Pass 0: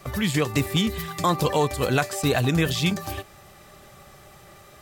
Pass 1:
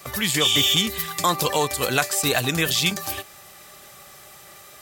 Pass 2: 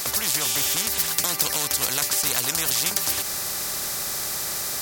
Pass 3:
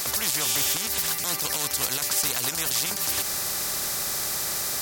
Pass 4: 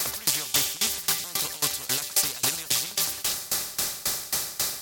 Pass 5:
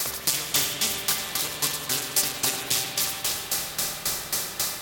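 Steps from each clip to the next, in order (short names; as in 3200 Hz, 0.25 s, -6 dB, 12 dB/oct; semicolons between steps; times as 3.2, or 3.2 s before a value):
spectral repair 0.43–0.73, 2300–12000 Hz after; tilt +2.5 dB/oct; gain +1.5 dB
resonant high shelf 4000 Hz +9 dB, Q 3; spectral compressor 4:1; gain -3.5 dB
limiter -13 dBFS, peak gain reduction 11 dB
delay with a stepping band-pass 0.117 s, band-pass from 3600 Hz, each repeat 0.7 oct, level 0 dB; dB-ramp tremolo decaying 3.7 Hz, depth 21 dB; gain +4 dB
spring tank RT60 4 s, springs 46/59 ms, chirp 65 ms, DRR 1 dB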